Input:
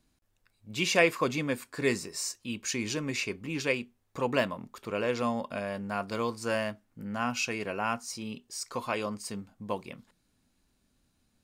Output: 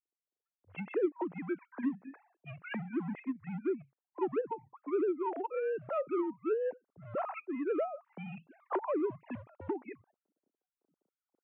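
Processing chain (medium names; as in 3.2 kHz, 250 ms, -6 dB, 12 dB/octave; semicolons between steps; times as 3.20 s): formants replaced by sine waves; recorder AGC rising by 9.2 dB/s; low-pass that closes with the level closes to 450 Hz, closed at -20.5 dBFS; tilt EQ -3 dB/octave; in parallel at -8 dB: overload inside the chain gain 27 dB; on the sum: level-controlled noise filter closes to 410 Hz, open at -21 dBFS; mistuned SSB -130 Hz 450–3000 Hz; trim -7 dB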